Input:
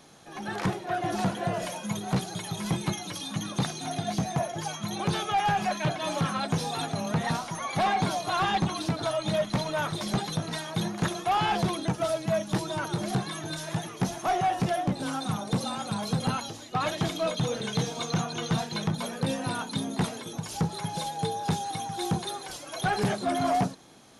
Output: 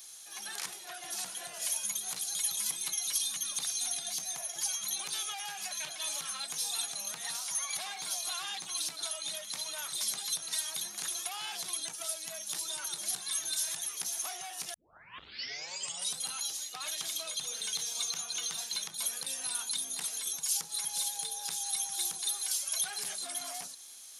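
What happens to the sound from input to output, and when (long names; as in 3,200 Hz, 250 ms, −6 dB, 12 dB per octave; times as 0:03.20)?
0:14.74: tape start 1.44 s
whole clip: high-shelf EQ 3,300 Hz +8 dB; downward compressor, threshold −30 dBFS; first difference; level +5 dB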